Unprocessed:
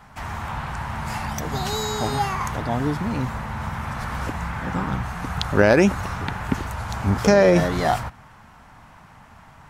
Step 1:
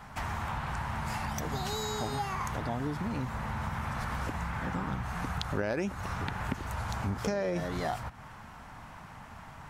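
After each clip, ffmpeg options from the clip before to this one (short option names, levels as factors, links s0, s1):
-af "acompressor=threshold=0.0251:ratio=4"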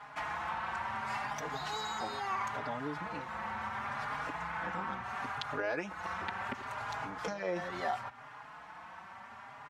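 -filter_complex "[0:a]bandpass=f=1400:t=q:w=0.54:csg=0,asplit=2[s0][s1];[s1]adelay=4.4,afreqshift=0.72[s2];[s0][s2]amix=inputs=2:normalize=1,volume=1.58"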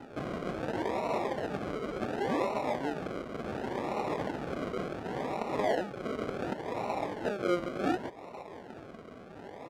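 -af "acrusher=samples=39:mix=1:aa=0.000001:lfo=1:lforange=23.4:lforate=0.69,bandpass=f=710:t=q:w=0.53:csg=0,volume=2.37"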